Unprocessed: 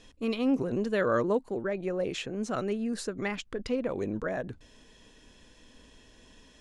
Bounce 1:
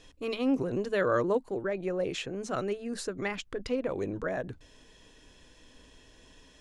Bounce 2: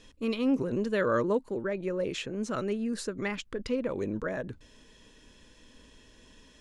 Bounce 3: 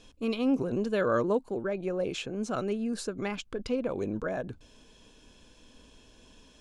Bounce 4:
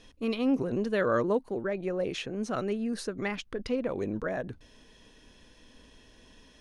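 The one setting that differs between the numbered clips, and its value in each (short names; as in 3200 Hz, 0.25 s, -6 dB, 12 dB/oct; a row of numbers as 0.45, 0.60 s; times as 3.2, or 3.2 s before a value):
notch, frequency: 220, 730, 1900, 7400 Hz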